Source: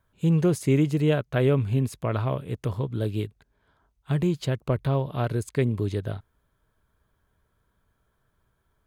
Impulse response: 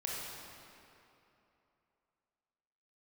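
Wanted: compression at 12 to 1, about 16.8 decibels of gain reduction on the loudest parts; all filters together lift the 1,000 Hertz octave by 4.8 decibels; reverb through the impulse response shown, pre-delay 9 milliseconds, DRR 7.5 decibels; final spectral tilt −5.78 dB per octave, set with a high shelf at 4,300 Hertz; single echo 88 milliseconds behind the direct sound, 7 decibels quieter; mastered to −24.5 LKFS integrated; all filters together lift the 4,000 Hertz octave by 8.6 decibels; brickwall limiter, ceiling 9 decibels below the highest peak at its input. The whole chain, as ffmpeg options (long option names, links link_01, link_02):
-filter_complex "[0:a]equalizer=frequency=1000:width_type=o:gain=5.5,equalizer=frequency=4000:width_type=o:gain=7.5,highshelf=frequency=4300:gain=6.5,acompressor=threshold=-34dB:ratio=12,alimiter=level_in=7dB:limit=-24dB:level=0:latency=1,volume=-7dB,aecho=1:1:88:0.447,asplit=2[link_01][link_02];[1:a]atrim=start_sample=2205,adelay=9[link_03];[link_02][link_03]afir=irnorm=-1:irlink=0,volume=-10.5dB[link_04];[link_01][link_04]amix=inputs=2:normalize=0,volume=15dB"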